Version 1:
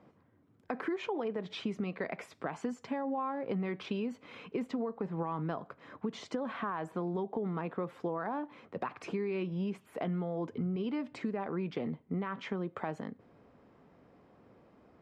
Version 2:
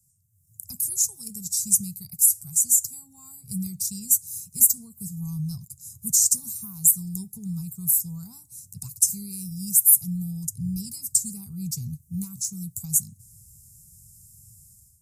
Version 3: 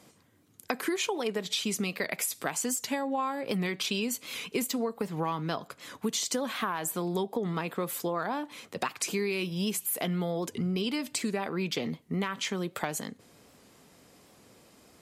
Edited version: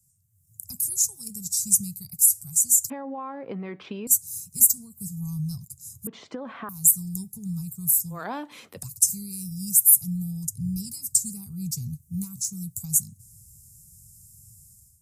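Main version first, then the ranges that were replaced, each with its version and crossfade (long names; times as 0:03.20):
2
0:02.90–0:04.07: punch in from 1
0:06.07–0:06.69: punch in from 1
0:08.18–0:08.76: punch in from 3, crossfade 0.16 s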